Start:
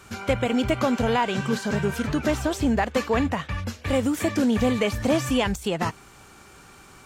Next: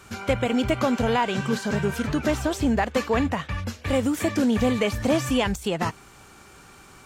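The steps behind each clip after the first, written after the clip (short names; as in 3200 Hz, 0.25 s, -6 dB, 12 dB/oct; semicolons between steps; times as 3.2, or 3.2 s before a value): nothing audible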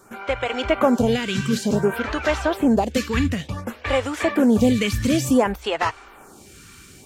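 AGC gain up to 5.5 dB; bell 150 Hz -3.5 dB 0.65 oct; photocell phaser 0.56 Hz; gain +2 dB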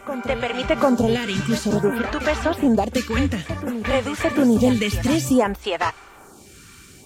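reverse echo 0.745 s -11.5 dB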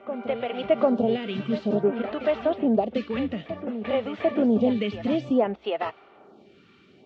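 speaker cabinet 180–3300 Hz, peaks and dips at 210 Hz +4 dB, 400 Hz +4 dB, 640 Hz +7 dB, 1000 Hz -6 dB, 1600 Hz -9 dB, 2300 Hz -4 dB; gain -6 dB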